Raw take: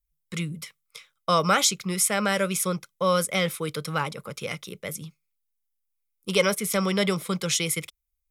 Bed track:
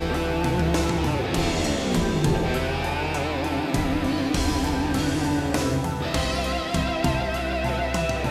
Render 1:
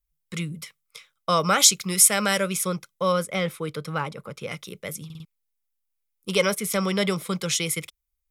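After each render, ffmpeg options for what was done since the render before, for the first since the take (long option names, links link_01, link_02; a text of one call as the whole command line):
ffmpeg -i in.wav -filter_complex "[0:a]asettb=1/sr,asplit=3[link_01][link_02][link_03];[link_01]atrim=end=1.604[link_04];[link_02]atrim=start=1.6:end=2.38,asetpts=PTS-STARTPTS,afade=type=in:duration=0.004:curve=qsin,afade=type=out:start_time=0.776:duration=0.004:curve=qsin,highshelf=frequency=3300:gain=8.5[link_05];[link_03]atrim=start=2.376[link_06];[link_04][link_05]acrossfade=duration=0.004:curve1=hsin:curve2=qsin[link_07];[link_07][link_06]acrossfade=duration=0.004:curve1=qsin:curve2=hsin,asettb=1/sr,asplit=3[link_08][link_09][link_10];[link_08]atrim=end=3.124[link_11];[link_09]atrim=start=3.12:end=4.52,asetpts=PTS-STARTPTS,afade=type=in:duration=0.004:curve=qsin,afade=type=out:start_time=1.396:duration=0.004:curve=qsin,highshelf=frequency=3100:gain=-8.5[link_12];[link_10]atrim=start=4.516[link_13];[link_11][link_12]acrossfade=duration=0.004:curve1=hsin:curve2=qsin[link_14];[link_14][link_13]acrossfade=duration=0.004:curve1=qsin:curve2=hsin,asplit=5[link_15][link_16][link_17][link_18][link_19];[link_15]atrim=end=5.102[link_20];[link_16]atrim=start=5.048:end=5.102[link_21];[link_17]atrim=start=5.048:end=5.102[link_22];[link_18]atrim=start=5.048:end=5.102[link_23];[link_19]atrim=start=5.248[link_24];[link_20][link_21]acrossfade=duration=0.004:curve1=hsin:curve2=hsin[link_25];[link_25][link_22]acrossfade=duration=0.004:curve1=hsin:curve2=hsin[link_26];[link_26][link_23]acrossfade=duration=0.004:curve1=hsin:curve2=hsin[link_27];[link_27][link_24]acrossfade=duration=0.004:curve1=hsin:curve2=hsin" out.wav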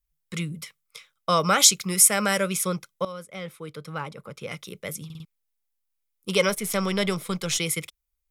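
ffmpeg -i in.wav -filter_complex "[0:a]asettb=1/sr,asplit=3[link_01][link_02][link_03];[link_01]atrim=end=1.844[link_04];[link_02]atrim=start=1.84:end=2.4,asetpts=PTS-STARTPTS,afade=type=in:duration=0.004:curve=qsin,afade=type=out:start_time=0.556:duration=0.004:curve=qsin,equalizer=frequency=3700:width_type=o:width=0.76:gain=-5.5[link_05];[link_03]atrim=start=2.396[link_06];[link_04][link_05]acrossfade=duration=0.004:curve1=hsin:curve2=qsin[link_07];[link_07][link_06]acrossfade=duration=0.004:curve1=qsin:curve2=hsin,asettb=1/sr,asplit=3[link_08][link_09][link_10];[link_08]atrim=end=6.494[link_11];[link_09]atrim=start=6.49:end=7.58,asetpts=PTS-STARTPTS,afade=type=in:duration=0.004:curve=qsin,afade=type=out:start_time=1.086:duration=0.004:curve=qsin,aeval=exprs='if(lt(val(0),0),0.708*val(0),val(0))':channel_layout=same[link_12];[link_10]atrim=start=7.576[link_13];[link_11][link_12]acrossfade=duration=0.004:curve1=hsin:curve2=qsin[link_14];[link_14][link_13]acrossfade=duration=0.004:curve1=qsin:curve2=hsin,asplit=2[link_15][link_16];[link_15]atrim=end=3.05,asetpts=PTS-STARTPTS,afade=type=out:start_time=3.046:duration=0.004:curve=hsin:silence=0.141254[link_17];[link_16]atrim=start=3.05,asetpts=PTS-STARTPTS,afade=type=in:duration=1.83:silence=0.141254[link_18];[link_17][link_18]concat=n=2:v=0:a=1" out.wav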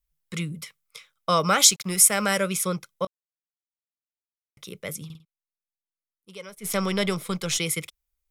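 ffmpeg -i in.wav -filter_complex "[0:a]asettb=1/sr,asplit=3[link_01][link_02][link_03];[link_01]atrim=end=1.484[link_04];[link_02]atrim=start=1.48:end=2.28,asetpts=PTS-STARTPTS,afade=type=in:duration=0.004:curve=qsin,afade=type=out:start_time=0.796:duration=0.004:curve=qsin,aeval=exprs='sgn(val(0))*max(abs(val(0))-0.00501,0)':channel_layout=same[link_05];[link_03]atrim=start=2.276[link_06];[link_04][link_05]acrossfade=duration=0.004:curve1=hsin:curve2=qsin[link_07];[link_07][link_06]acrossfade=duration=0.004:curve1=qsin:curve2=hsin,asplit=5[link_08][link_09][link_10][link_11][link_12];[link_08]atrim=end=3.07,asetpts=PTS-STARTPTS,afade=type=out:start_time=3.066:duration=0.004:curve=hsin[link_13];[link_09]atrim=start=3.07:end=4.57,asetpts=PTS-STARTPTS,volume=0[link_14];[link_10]atrim=start=4.57:end=5.41,asetpts=PTS-STARTPTS,afade=type=in:duration=0.004:curve=hsin,afade=type=out:start_time=0.57:duration=0.27:curve=exp:silence=0.112202[link_15];[link_11]atrim=start=5.41:end=6.39,asetpts=PTS-STARTPTS,volume=-19dB[link_16];[link_12]atrim=start=6.39,asetpts=PTS-STARTPTS,afade=type=in:duration=0.27:curve=exp:silence=0.112202[link_17];[link_13][link_14][link_15][link_16][link_17]concat=n=5:v=0:a=1" out.wav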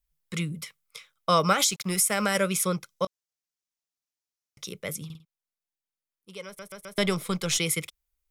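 ffmpeg -i in.wav -filter_complex "[0:a]asettb=1/sr,asplit=3[link_01][link_02][link_03];[link_01]atrim=end=1.524[link_04];[link_02]atrim=start=1.52:end=2.35,asetpts=PTS-STARTPTS,afade=type=in:duration=0.004:curve=qsin,afade=type=out:start_time=0.826:duration=0.004:curve=qsin,acompressor=threshold=-18dB:ratio=12:attack=3.2:release=140:knee=1:detection=peak[link_05];[link_03]atrim=start=2.346[link_06];[link_04][link_05]acrossfade=duration=0.004:curve1=hsin:curve2=qsin[link_07];[link_07][link_06]acrossfade=duration=0.004:curve1=qsin:curve2=hsin,asettb=1/sr,asplit=3[link_08][link_09][link_10];[link_08]atrim=end=2.884[link_11];[link_09]atrim=start=2.88:end=4.73,asetpts=PTS-STARTPTS,afade=type=in:duration=0.004:curve=qsin,afade=type=out:start_time=1.846:duration=0.004:curve=qsin,equalizer=frequency=5800:width_type=o:width=0.91:gain=8[link_12];[link_10]atrim=start=4.726[link_13];[link_11][link_12]acrossfade=duration=0.004:curve1=hsin:curve2=qsin[link_14];[link_14][link_13]acrossfade=duration=0.004:curve1=qsin:curve2=hsin,asplit=5[link_15][link_16][link_17][link_18][link_19];[link_15]atrim=end=6.592[link_20];[link_16]atrim=start=6.458:end=6.592[link_21];[link_17]atrim=start=6.458:end=6.592[link_22];[link_18]atrim=start=6.458:end=6.592[link_23];[link_19]atrim=start=6.978[link_24];[link_20][link_21]acrossfade=duration=0.004:curve1=hsin:curve2=hsin[link_25];[link_25][link_22]acrossfade=duration=0.004:curve1=hsin:curve2=hsin[link_26];[link_26][link_23]acrossfade=duration=0.004:curve1=hsin:curve2=hsin[link_27];[link_27][link_24]acrossfade=duration=0.004:curve1=hsin:curve2=hsin" out.wav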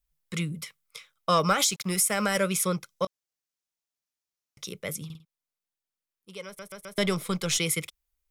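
ffmpeg -i in.wav -af "asoftclip=type=tanh:threshold=-11.5dB" out.wav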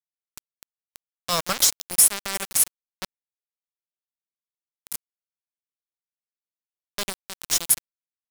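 ffmpeg -i in.wav -af "aexciter=amount=3.2:drive=2.2:freq=4100,aeval=exprs='val(0)*gte(abs(val(0)),0.141)':channel_layout=same" out.wav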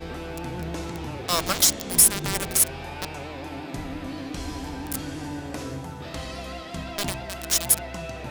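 ffmpeg -i in.wav -i bed.wav -filter_complex "[1:a]volume=-10dB[link_01];[0:a][link_01]amix=inputs=2:normalize=0" out.wav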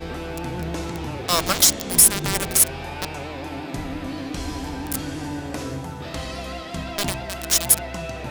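ffmpeg -i in.wav -af "volume=3.5dB,alimiter=limit=-1dB:level=0:latency=1" out.wav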